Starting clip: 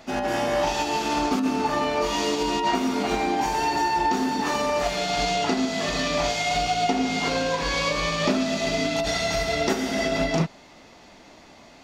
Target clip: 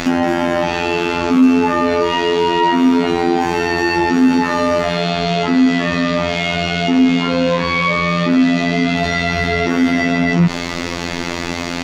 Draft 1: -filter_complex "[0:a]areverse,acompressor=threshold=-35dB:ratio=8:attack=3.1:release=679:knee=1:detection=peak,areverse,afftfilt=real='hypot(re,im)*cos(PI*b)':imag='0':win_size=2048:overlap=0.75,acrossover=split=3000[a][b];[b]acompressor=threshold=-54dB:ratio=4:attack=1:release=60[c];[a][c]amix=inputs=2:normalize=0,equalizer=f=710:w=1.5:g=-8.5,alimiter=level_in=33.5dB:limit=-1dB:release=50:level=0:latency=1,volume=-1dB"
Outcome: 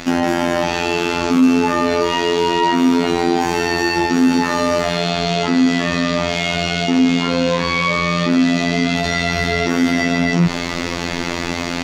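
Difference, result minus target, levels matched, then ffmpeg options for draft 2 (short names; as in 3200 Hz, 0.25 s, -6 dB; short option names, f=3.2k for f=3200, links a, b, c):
compressor: peak gain reduction +9.5 dB
-filter_complex "[0:a]areverse,acompressor=threshold=-24dB:ratio=8:attack=3.1:release=679:knee=1:detection=peak,areverse,afftfilt=real='hypot(re,im)*cos(PI*b)':imag='0':win_size=2048:overlap=0.75,acrossover=split=3000[a][b];[b]acompressor=threshold=-54dB:ratio=4:attack=1:release=60[c];[a][c]amix=inputs=2:normalize=0,equalizer=f=710:w=1.5:g=-8.5,alimiter=level_in=33.5dB:limit=-1dB:release=50:level=0:latency=1,volume=-1dB"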